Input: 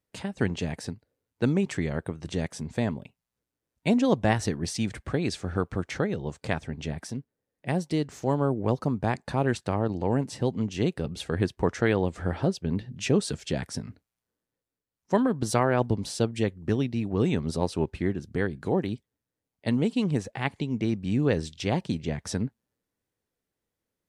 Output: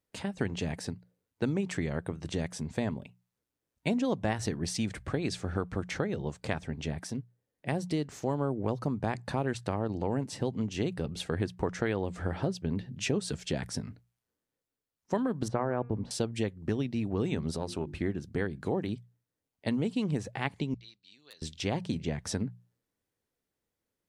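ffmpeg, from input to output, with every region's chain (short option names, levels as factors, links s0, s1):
-filter_complex "[0:a]asettb=1/sr,asplit=3[s0][s1][s2];[s0]atrim=end=15.484[s3];[s1]atrim=start=15.48:end=16.11,asetpts=PTS-STARTPTS,afade=t=in:d=0.004:c=qsin,afade=t=out:st=0.626:d=0.004:c=qsin,lowpass=1400,bandreject=f=237:t=h:w=4,bandreject=f=474:t=h:w=4,bandreject=f=711:t=h:w=4,bandreject=f=948:t=h:w=4,bandreject=f=1185:t=h:w=4,bandreject=f=1422:t=h:w=4,bandreject=f=1659:t=h:w=4,bandreject=f=1896:t=h:w=4,bandreject=f=2133:t=h:w=4,bandreject=f=2370:t=h:w=4,bandreject=f=2607:t=h:w=4[s4];[s2]atrim=start=16.106[s5];[s3][s4]acrossfade=d=0.004:c1=hsin:c2=qsin[s6];[s6][s5]acrossfade=d=0.004:c1=qsin:c2=hsin,asettb=1/sr,asplit=3[s7][s8][s9];[s7]atrim=end=17.524[s10];[s8]atrim=start=17.52:end=18.01,asetpts=PTS-STARTPTS,afade=t=in:d=0.004:c=qsin,afade=t=out:st=0.486:d=0.004:c=qsin,bandreject=f=50:t=h:w=6,bandreject=f=100:t=h:w=6,bandreject=f=150:t=h:w=6,bandreject=f=200:t=h:w=6,bandreject=f=250:t=h:w=6,bandreject=f=300:t=h:w=6,bandreject=f=350:t=h:w=6,acompressor=threshold=0.0398:ratio=2.5:attack=3.2:release=140:knee=1:detection=peak[s11];[s9]atrim=start=18.006[s12];[s10][s11]acrossfade=d=0.004:c1=hsin:c2=qsin[s13];[s13][s12]acrossfade=d=0.004:c1=qsin:c2=hsin,asettb=1/sr,asplit=3[s14][s15][s16];[s14]atrim=end=20.744[s17];[s15]atrim=start=20.74:end=21.42,asetpts=PTS-STARTPTS,afade=t=in:d=0.004:c=qsin,afade=t=out:st=0.676:d=0.004:c=qsin,bandpass=f=4100:t=q:w=6.1,aeval=exprs='0.0119*(abs(mod(val(0)/0.0119+3,4)-2)-1)':c=same[s18];[s16]atrim=start=21.416[s19];[s17][s18]acrossfade=d=0.004:c1=hsin:c2=qsin[s20];[s20][s19]acrossfade=d=0.004:c1=qsin:c2=hsin,bandreject=f=60:t=h:w=6,bandreject=f=120:t=h:w=6,bandreject=f=180:t=h:w=6,acompressor=threshold=0.0501:ratio=3,volume=0.891"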